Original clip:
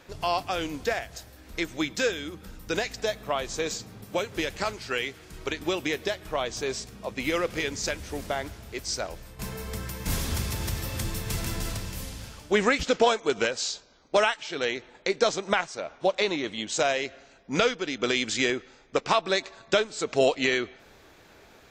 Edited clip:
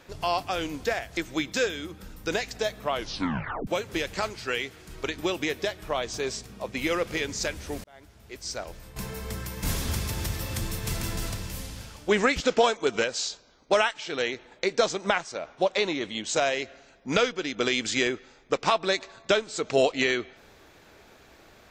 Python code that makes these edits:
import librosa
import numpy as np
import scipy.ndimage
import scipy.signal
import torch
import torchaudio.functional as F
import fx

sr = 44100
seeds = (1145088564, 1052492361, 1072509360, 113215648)

y = fx.edit(x, sr, fx.cut(start_s=1.17, length_s=0.43),
    fx.tape_stop(start_s=3.36, length_s=0.74),
    fx.fade_in_span(start_s=8.27, length_s=1.04), tone=tone)